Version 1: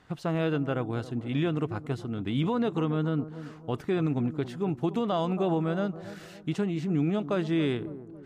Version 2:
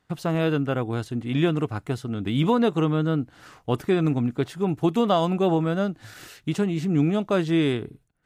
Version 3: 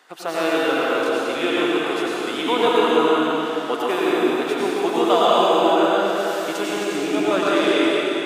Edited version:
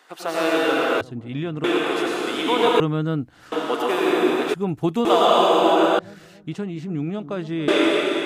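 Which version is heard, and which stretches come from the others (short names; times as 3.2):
3
1.01–1.64 from 1
2.8–3.52 from 2
4.54–5.05 from 2
5.99–7.68 from 1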